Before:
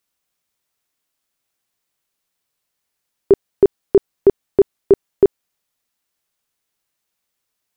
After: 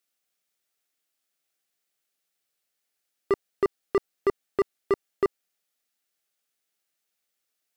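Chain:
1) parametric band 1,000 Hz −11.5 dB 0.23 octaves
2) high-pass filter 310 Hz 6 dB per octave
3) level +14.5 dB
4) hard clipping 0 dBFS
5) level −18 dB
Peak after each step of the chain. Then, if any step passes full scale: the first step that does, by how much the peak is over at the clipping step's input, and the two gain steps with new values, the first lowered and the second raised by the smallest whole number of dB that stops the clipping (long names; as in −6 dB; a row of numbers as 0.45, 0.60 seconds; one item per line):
−4.0, −5.5, +9.0, 0.0, −18.0 dBFS
step 3, 9.0 dB
step 3 +5.5 dB, step 5 −9 dB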